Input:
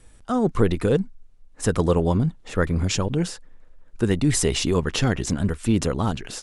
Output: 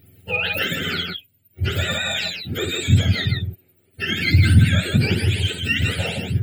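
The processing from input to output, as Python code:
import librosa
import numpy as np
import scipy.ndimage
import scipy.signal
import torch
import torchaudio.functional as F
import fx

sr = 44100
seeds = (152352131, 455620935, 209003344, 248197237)

p1 = fx.octave_mirror(x, sr, pivot_hz=790.0)
p2 = 10.0 ** (-20.5 / 20.0) * np.tanh(p1 / 10.0 ** (-20.5 / 20.0))
p3 = p1 + F.gain(torch.from_numpy(p2), -6.0).numpy()
p4 = fx.fixed_phaser(p3, sr, hz=2600.0, stages=4)
p5 = fx.echo_multitap(p4, sr, ms=(54, 158, 169), db=(-6.5, -6.0, -11.0))
y = F.gain(torch.from_numpy(p5), 1.5).numpy()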